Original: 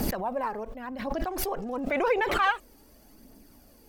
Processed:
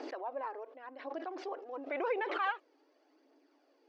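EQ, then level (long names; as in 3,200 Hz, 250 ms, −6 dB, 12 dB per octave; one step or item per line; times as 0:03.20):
linear-phase brick-wall high-pass 270 Hz
low-pass filter 6,600 Hz 24 dB per octave
high-frequency loss of the air 190 metres
−8.0 dB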